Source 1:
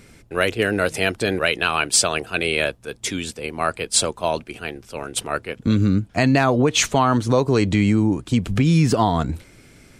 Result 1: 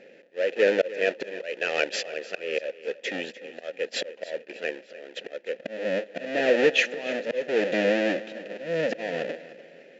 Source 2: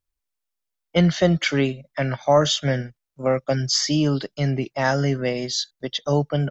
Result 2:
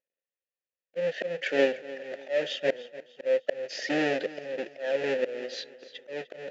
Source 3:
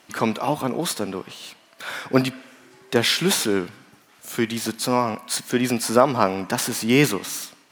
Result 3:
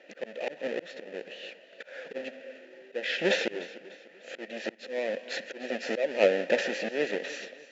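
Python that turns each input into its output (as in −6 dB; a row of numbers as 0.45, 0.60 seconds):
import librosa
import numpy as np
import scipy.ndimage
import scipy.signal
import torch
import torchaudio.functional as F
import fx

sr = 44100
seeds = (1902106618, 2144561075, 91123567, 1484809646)

y = fx.halfwave_hold(x, sr)
y = fx.vowel_filter(y, sr, vowel='e')
y = fx.auto_swell(y, sr, attack_ms=392.0)
y = fx.brickwall_bandpass(y, sr, low_hz=150.0, high_hz=7600.0)
y = fx.echo_feedback(y, sr, ms=298, feedback_pct=40, wet_db=-17.0)
y = y * 10.0 ** (7.0 / 20.0)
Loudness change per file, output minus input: −7.0, −8.5, −9.0 LU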